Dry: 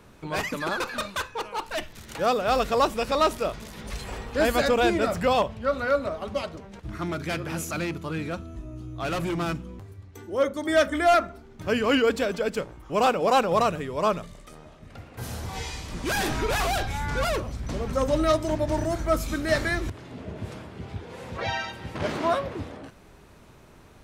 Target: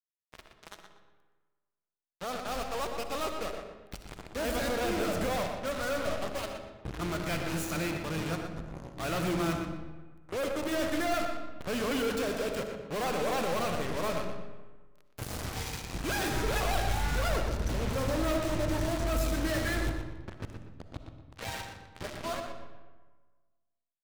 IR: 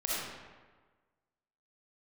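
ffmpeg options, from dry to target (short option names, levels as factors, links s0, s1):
-filter_complex "[0:a]dynaudnorm=f=900:g=9:m=5.01,acrusher=bits=2:mix=0:aa=0.5,asoftclip=type=hard:threshold=0.0355,asplit=2[s0][s1];[s1]adelay=120,lowpass=f=4800:p=1,volume=0.447,asplit=2[s2][s3];[s3]adelay=120,lowpass=f=4800:p=1,volume=0.31,asplit=2[s4][s5];[s5]adelay=120,lowpass=f=4800:p=1,volume=0.31,asplit=2[s6][s7];[s7]adelay=120,lowpass=f=4800:p=1,volume=0.31[s8];[s0][s2][s4][s6][s8]amix=inputs=5:normalize=0,asplit=2[s9][s10];[1:a]atrim=start_sample=2205,lowshelf=f=260:g=11[s11];[s10][s11]afir=irnorm=-1:irlink=0,volume=0.224[s12];[s9][s12]amix=inputs=2:normalize=0,volume=0.708"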